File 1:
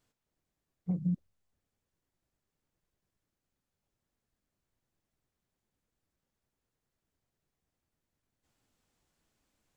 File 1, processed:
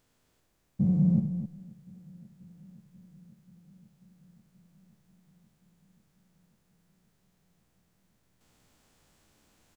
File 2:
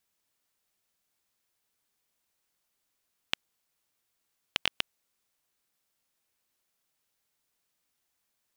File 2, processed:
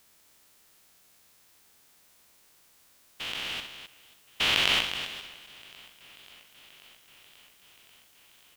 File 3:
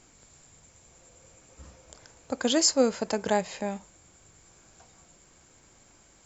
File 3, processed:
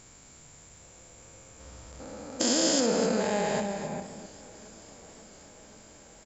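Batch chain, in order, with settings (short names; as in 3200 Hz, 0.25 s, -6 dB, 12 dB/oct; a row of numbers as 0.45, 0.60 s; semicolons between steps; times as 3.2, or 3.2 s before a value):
stepped spectrum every 0.4 s; loudspeakers at several distances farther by 22 m -8 dB, 89 m -10 dB; warbling echo 0.536 s, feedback 76%, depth 86 cents, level -24 dB; match loudness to -27 LUFS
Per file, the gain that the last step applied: +13.0, +19.0, +5.0 dB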